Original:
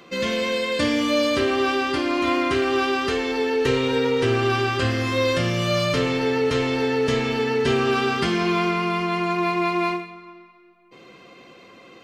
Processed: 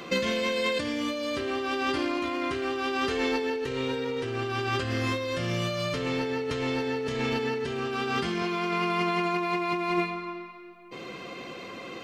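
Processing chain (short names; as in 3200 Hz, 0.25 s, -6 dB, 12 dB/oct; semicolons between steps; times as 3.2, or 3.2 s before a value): 8.42–9.73 HPF 200 Hz 6 dB/oct; negative-ratio compressor -29 dBFS, ratio -1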